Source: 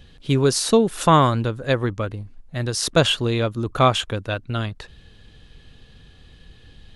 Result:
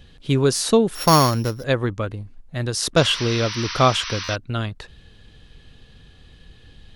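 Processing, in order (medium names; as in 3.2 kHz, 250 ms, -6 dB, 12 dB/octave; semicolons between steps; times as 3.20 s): 0.95–1.64 s: sorted samples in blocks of 8 samples; 2.96–4.36 s: painted sound noise 910–6100 Hz -31 dBFS; buffer glitch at 0.55/4.23 s, samples 512, times 4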